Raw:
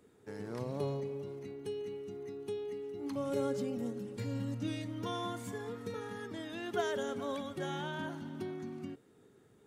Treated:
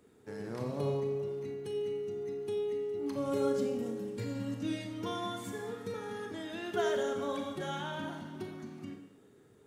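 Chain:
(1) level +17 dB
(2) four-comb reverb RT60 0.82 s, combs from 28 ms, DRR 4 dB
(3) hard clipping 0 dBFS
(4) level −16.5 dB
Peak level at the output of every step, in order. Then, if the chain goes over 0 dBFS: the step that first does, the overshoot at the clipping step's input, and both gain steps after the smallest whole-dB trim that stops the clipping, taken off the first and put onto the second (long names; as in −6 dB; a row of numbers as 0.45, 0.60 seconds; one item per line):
−4.5, −2.5, −2.5, −19.0 dBFS
no step passes full scale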